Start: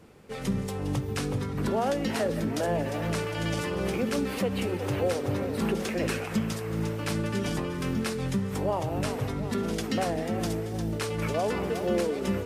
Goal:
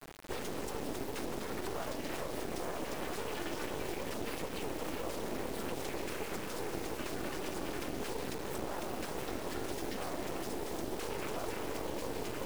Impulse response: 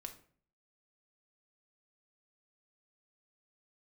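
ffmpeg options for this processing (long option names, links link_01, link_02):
-filter_complex "[0:a]lowshelf=frequency=210:width_type=q:width=3:gain=-11.5,alimiter=level_in=0.5dB:limit=-24dB:level=0:latency=1:release=56,volume=-0.5dB,afftfilt=real='hypot(re,im)*cos(2*PI*random(0))':imag='hypot(re,im)*sin(2*PI*random(1))':win_size=512:overlap=0.75,acrossover=split=300|1700[link_01][link_02][link_03];[link_01]acompressor=threshold=-54dB:ratio=4[link_04];[link_02]acompressor=threshold=-44dB:ratio=4[link_05];[link_03]acompressor=threshold=-53dB:ratio=4[link_06];[link_04][link_05][link_06]amix=inputs=3:normalize=0,acrusher=bits=6:dc=4:mix=0:aa=0.000001,volume=9.5dB"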